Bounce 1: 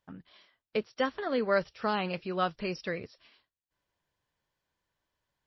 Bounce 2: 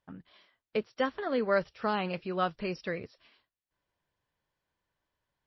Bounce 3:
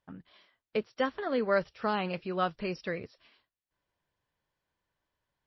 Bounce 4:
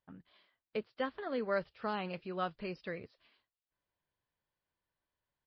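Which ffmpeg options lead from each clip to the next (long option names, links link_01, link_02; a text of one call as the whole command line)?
ffmpeg -i in.wav -af "lowpass=frequency=3900:poles=1" out.wav
ffmpeg -i in.wav -af anull out.wav
ffmpeg -i in.wav -af "aresample=11025,aresample=44100,volume=-6.5dB" out.wav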